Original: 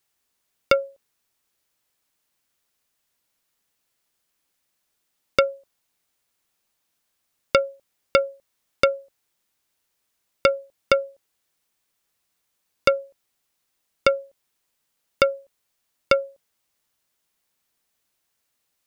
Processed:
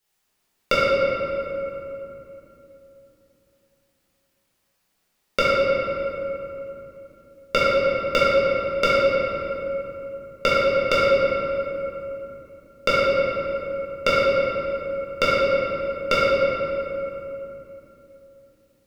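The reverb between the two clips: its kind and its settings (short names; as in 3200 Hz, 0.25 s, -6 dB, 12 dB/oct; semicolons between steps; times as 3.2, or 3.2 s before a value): shoebox room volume 150 m³, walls hard, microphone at 1.4 m; gain -4 dB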